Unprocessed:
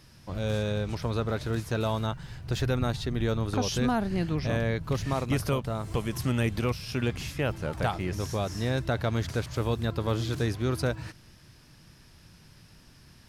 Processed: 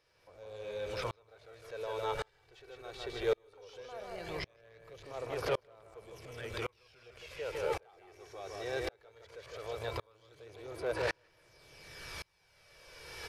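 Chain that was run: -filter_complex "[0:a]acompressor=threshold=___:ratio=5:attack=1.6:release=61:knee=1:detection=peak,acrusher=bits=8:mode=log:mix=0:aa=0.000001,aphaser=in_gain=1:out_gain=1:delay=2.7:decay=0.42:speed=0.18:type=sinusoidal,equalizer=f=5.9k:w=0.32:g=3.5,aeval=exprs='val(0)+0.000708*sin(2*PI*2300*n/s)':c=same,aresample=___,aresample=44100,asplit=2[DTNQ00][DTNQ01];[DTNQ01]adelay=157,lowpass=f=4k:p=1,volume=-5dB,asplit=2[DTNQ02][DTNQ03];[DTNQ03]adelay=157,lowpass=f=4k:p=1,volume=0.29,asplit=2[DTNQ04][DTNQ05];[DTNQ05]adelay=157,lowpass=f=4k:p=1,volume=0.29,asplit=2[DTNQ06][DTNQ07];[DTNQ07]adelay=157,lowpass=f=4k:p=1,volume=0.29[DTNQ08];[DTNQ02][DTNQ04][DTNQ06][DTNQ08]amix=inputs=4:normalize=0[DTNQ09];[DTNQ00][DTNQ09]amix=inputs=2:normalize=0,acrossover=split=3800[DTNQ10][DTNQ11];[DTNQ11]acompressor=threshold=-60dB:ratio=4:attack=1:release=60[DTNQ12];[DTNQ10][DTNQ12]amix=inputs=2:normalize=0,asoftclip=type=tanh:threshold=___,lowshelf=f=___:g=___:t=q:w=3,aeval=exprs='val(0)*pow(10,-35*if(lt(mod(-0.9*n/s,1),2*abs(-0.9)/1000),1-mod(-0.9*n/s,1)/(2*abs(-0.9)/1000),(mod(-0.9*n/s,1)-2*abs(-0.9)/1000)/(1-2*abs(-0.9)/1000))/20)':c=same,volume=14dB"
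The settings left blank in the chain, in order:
-43dB, 32000, -37dB, 330, -11.5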